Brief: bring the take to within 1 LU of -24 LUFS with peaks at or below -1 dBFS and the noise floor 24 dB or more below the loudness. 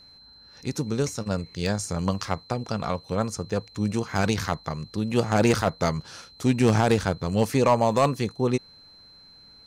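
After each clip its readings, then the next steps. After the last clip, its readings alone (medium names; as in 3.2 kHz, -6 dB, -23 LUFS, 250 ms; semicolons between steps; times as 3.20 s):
clipped samples 0.3%; clipping level -12.0 dBFS; steady tone 4.1 kHz; tone level -49 dBFS; loudness -25.5 LUFS; peak level -12.0 dBFS; loudness target -24.0 LUFS
-> clip repair -12 dBFS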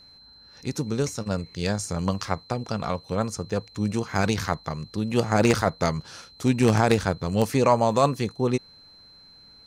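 clipped samples 0.0%; steady tone 4.1 kHz; tone level -49 dBFS
-> band-stop 4.1 kHz, Q 30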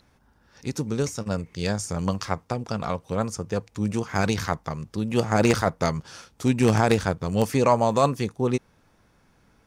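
steady tone not found; loudness -25.0 LUFS; peak level -3.0 dBFS; loudness target -24.0 LUFS
-> trim +1 dB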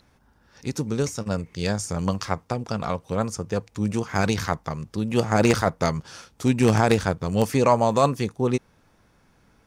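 loudness -24.0 LUFS; peak level -2.0 dBFS; noise floor -61 dBFS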